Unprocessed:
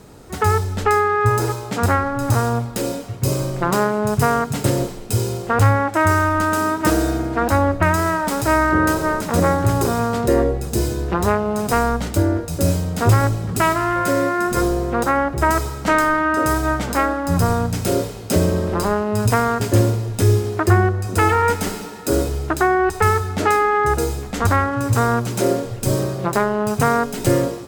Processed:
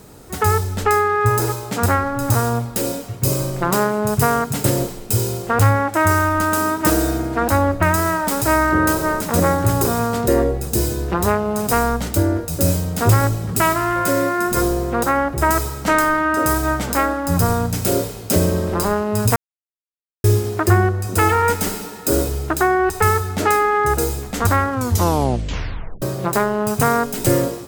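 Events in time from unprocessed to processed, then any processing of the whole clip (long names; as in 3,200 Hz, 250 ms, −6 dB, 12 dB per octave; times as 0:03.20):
0:19.36–0:20.24: silence
0:24.70: tape stop 1.32 s
whole clip: high-shelf EQ 10,000 Hz +11.5 dB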